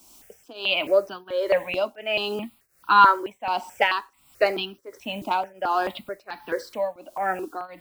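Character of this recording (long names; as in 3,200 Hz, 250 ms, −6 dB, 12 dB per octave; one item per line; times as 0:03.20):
a quantiser's noise floor 10 bits, dither triangular
tremolo triangle 1.4 Hz, depth 95%
notches that jump at a steady rate 4.6 Hz 470–2,100 Hz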